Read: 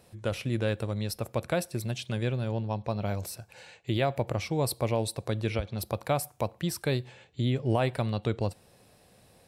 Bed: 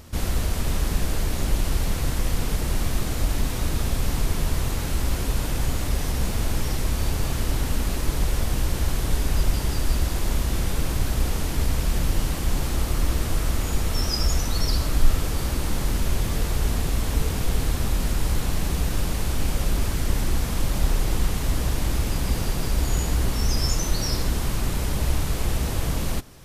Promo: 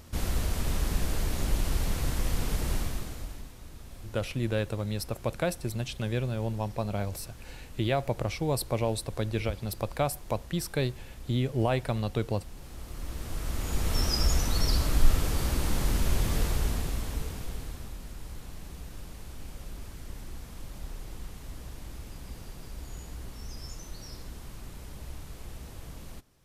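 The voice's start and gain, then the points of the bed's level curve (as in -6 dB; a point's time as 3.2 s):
3.90 s, -0.5 dB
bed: 2.74 s -5 dB
3.55 s -22 dB
12.54 s -22 dB
13.95 s -3 dB
16.42 s -3 dB
18.01 s -18.5 dB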